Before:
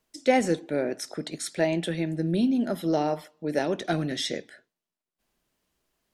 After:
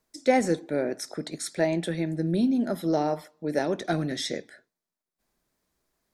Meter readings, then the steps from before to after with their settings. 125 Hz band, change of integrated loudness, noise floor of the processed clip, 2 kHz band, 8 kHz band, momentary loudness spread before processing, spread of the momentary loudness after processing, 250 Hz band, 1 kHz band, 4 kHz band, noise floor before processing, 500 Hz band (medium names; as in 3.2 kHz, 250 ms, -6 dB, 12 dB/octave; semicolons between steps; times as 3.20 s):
0.0 dB, 0.0 dB, under -85 dBFS, -1.0 dB, 0.0 dB, 9 LU, 9 LU, 0.0 dB, 0.0 dB, -2.0 dB, under -85 dBFS, 0.0 dB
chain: peaking EQ 2.9 kHz -9.5 dB 0.33 oct